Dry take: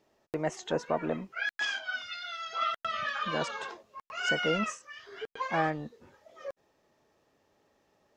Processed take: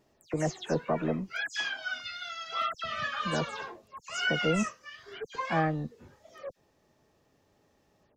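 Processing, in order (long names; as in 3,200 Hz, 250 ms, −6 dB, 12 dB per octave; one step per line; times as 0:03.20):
every frequency bin delayed by itself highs early, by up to 125 ms
bass and treble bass +8 dB, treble +3 dB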